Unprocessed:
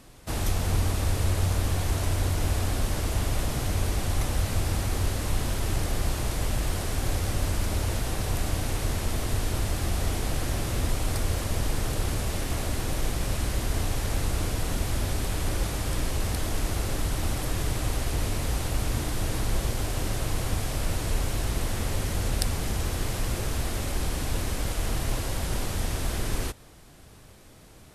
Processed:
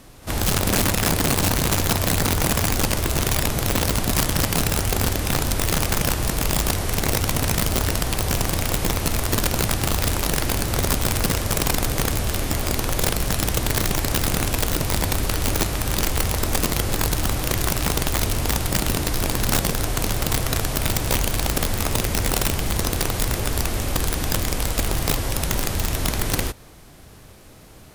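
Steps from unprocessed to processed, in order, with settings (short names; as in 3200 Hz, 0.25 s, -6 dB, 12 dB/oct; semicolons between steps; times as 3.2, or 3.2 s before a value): reverse echo 56 ms -19.5 dB; wrapped overs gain 19.5 dB; formant shift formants +2 st; gain +5 dB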